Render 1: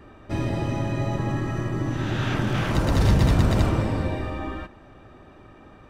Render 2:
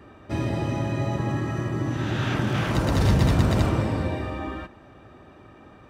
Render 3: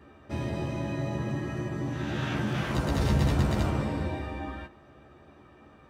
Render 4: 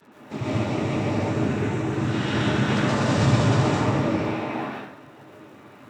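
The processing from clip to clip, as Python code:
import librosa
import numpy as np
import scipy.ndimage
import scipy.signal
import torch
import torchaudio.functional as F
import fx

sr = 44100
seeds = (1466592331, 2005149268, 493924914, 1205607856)

y1 = scipy.signal.sosfilt(scipy.signal.butter(2, 59.0, 'highpass', fs=sr, output='sos'), x)
y2 = fx.doubler(y1, sr, ms=14.0, db=-3.5)
y2 = y2 * librosa.db_to_amplitude(-6.5)
y3 = fx.noise_vocoder(y2, sr, seeds[0], bands=12)
y3 = fx.dmg_crackle(y3, sr, seeds[1], per_s=66.0, level_db=-50.0)
y3 = fx.rev_plate(y3, sr, seeds[2], rt60_s=0.71, hf_ratio=0.9, predelay_ms=110, drr_db=-6.0)
y3 = y3 * librosa.db_to_amplitude(2.0)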